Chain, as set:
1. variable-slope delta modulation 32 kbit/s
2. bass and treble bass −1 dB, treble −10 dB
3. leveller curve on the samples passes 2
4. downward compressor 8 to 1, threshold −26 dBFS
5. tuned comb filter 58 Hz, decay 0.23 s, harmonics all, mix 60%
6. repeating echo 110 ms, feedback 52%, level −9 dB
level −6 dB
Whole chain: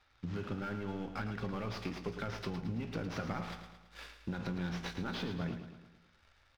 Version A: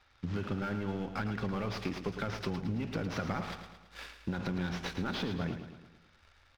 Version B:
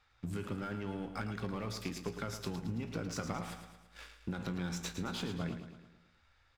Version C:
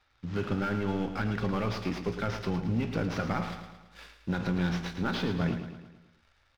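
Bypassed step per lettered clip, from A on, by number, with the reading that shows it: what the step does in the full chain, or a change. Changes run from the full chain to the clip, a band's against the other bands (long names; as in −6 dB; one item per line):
5, change in integrated loudness +3.5 LU
1, 4 kHz band +1.5 dB
4, average gain reduction 6.5 dB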